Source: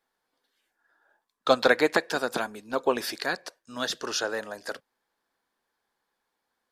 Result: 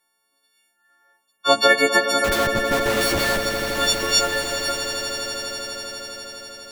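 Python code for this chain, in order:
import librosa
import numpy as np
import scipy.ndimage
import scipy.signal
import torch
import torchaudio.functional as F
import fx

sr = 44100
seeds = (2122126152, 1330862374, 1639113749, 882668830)

y = fx.freq_snap(x, sr, grid_st=4)
y = fx.schmitt(y, sr, flips_db=-30.0, at=(2.24, 3.43))
y = fx.echo_swell(y, sr, ms=82, loudest=8, wet_db=-13)
y = y * librosa.db_to_amplitude(2.0)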